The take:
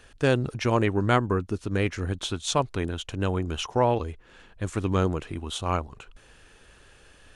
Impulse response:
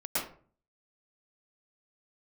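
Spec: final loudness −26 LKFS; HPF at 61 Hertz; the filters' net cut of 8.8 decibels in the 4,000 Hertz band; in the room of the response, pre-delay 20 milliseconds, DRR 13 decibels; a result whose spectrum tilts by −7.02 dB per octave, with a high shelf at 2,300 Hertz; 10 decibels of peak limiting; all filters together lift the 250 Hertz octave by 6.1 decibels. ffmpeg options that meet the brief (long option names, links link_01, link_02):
-filter_complex "[0:a]highpass=61,equalizer=frequency=250:width_type=o:gain=8,highshelf=frequency=2300:gain=-7.5,equalizer=frequency=4000:width_type=o:gain=-5,alimiter=limit=-17dB:level=0:latency=1,asplit=2[link_01][link_02];[1:a]atrim=start_sample=2205,adelay=20[link_03];[link_02][link_03]afir=irnorm=-1:irlink=0,volume=-20dB[link_04];[link_01][link_04]amix=inputs=2:normalize=0,volume=3dB"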